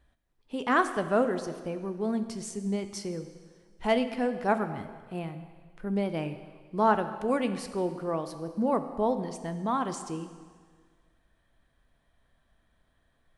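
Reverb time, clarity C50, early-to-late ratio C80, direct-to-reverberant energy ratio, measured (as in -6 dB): 1.7 s, 10.5 dB, 11.5 dB, 9.0 dB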